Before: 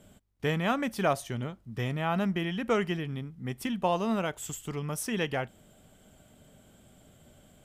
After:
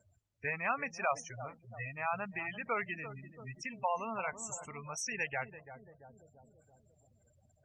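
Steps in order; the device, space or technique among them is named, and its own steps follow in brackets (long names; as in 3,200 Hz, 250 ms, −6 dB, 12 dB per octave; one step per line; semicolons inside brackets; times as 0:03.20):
drawn EQ curve 100 Hz 0 dB, 160 Hz −17 dB, 330 Hz −17 dB, 940 Hz −3 dB, 1,400 Hz −3 dB, 2,600 Hz +1 dB, 3,900 Hz −23 dB, 5,700 Hz +6 dB, 9,200 Hz −10 dB, 14,000 Hz −25 dB
feedback echo with a low-pass in the loop 338 ms, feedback 67%, low-pass 970 Hz, level −10 dB
gate on every frequency bin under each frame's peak −15 dB strong
0:00.94–0:02.66: low-shelf EQ 110 Hz −6 dB
noise-suppressed video call (high-pass filter 130 Hz 12 dB per octave; gate on every frequency bin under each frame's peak −20 dB strong; level +1 dB; Opus 32 kbit/s 48,000 Hz)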